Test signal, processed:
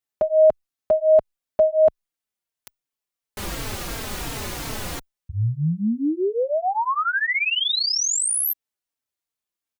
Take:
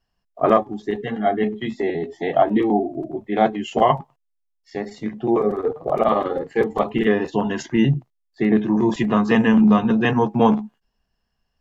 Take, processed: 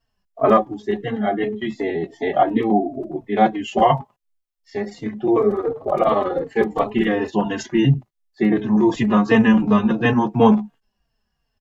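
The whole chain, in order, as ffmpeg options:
ffmpeg -i in.wav -filter_complex "[0:a]asplit=2[link_01][link_02];[link_02]adelay=3.9,afreqshift=-2.8[link_03];[link_01][link_03]amix=inputs=2:normalize=1,volume=4dB" out.wav

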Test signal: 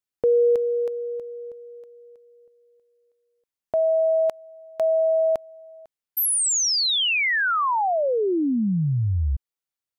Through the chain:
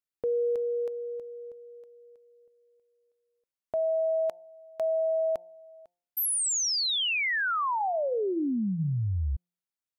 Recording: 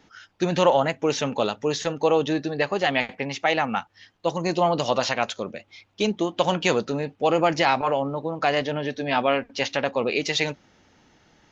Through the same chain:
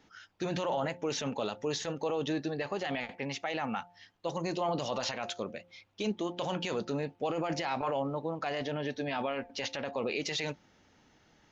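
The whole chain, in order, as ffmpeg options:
ffmpeg -i in.wav -af "bandreject=frequency=175.8:width_type=h:width=4,bandreject=frequency=351.6:width_type=h:width=4,bandreject=frequency=527.4:width_type=h:width=4,bandreject=frequency=703.2:width_type=h:width=4,bandreject=frequency=879:width_type=h:width=4,alimiter=limit=-17.5dB:level=0:latency=1:release=15,volume=-6dB" out.wav

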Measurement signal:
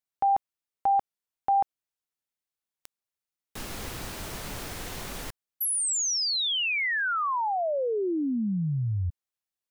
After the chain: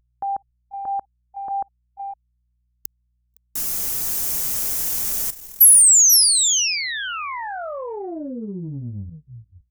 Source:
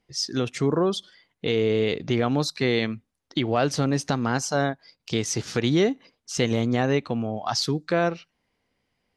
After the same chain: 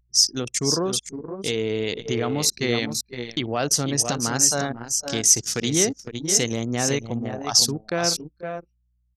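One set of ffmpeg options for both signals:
ffmpeg -i in.wav -filter_complex "[0:a]equalizer=frequency=78:width=7.6:gain=-9.5,aeval=exprs='val(0)+0.00251*(sin(2*PI*60*n/s)+sin(2*PI*2*60*n/s)/2+sin(2*PI*3*60*n/s)/3+sin(2*PI*4*60*n/s)/4+sin(2*PI*5*60*n/s)/5)':channel_layout=same,aexciter=amount=2.7:drive=7.1:freq=5500,afftfilt=real='re*gte(hypot(re,im),0.00631)':imag='im*gte(hypot(re,im),0.00631)':win_size=1024:overlap=0.75,highshelf=frequency=3300:gain=10.5,asplit=2[link_01][link_02];[link_02]aecho=0:1:58|487|512:0.133|0.237|0.422[link_03];[link_01][link_03]amix=inputs=2:normalize=0,anlmdn=398,volume=-3dB" out.wav

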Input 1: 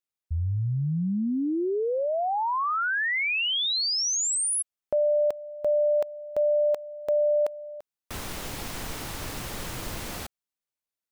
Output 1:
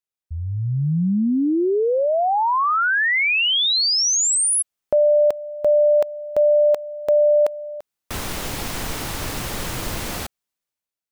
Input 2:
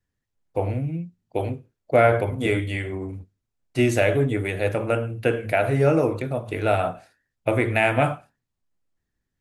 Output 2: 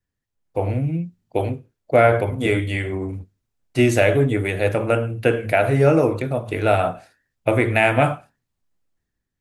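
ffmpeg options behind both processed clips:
ffmpeg -i in.wav -af "dynaudnorm=framelen=150:gausssize=9:maxgain=9.5dB,volume=-2dB" out.wav

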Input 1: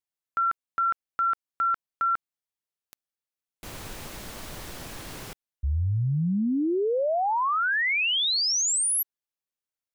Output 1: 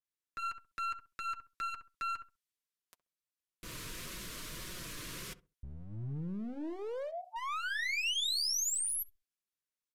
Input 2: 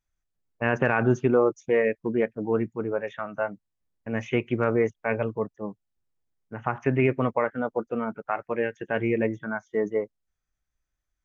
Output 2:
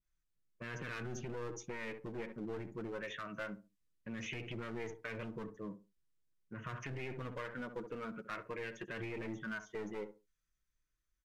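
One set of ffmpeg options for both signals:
ffmpeg -i in.wav -filter_complex "[0:a]asuperstop=centerf=820:order=12:qfactor=4.2,equalizer=frequency=660:width_type=o:width=0.5:gain=-7.5,aeval=exprs='clip(val(0),-1,0.0355)':channel_layout=same,asplit=2[link_01][link_02];[link_02]adelay=66,lowpass=frequency=930:poles=1,volume=-15.5dB,asplit=2[link_03][link_04];[link_04]adelay=66,lowpass=frequency=930:poles=1,volume=0.25,asplit=2[link_05][link_06];[link_06]adelay=66,lowpass=frequency=930:poles=1,volume=0.25[link_07];[link_01][link_03][link_05][link_07]amix=inputs=4:normalize=0,alimiter=limit=-18.5dB:level=0:latency=1:release=30,acompressor=threshold=-36dB:ratio=3:attack=0.72:release=61:knee=6:detection=peak,flanger=delay=5.4:depth=1.3:regen=-35:speed=1.7:shape=sinusoidal,aresample=32000,aresample=44100,adynamicequalizer=threshold=0.002:dfrequency=1600:dqfactor=0.7:tfrequency=1600:tqfactor=0.7:attack=5:release=100:ratio=0.375:range=3.5:mode=boostabove:tftype=highshelf" out.wav

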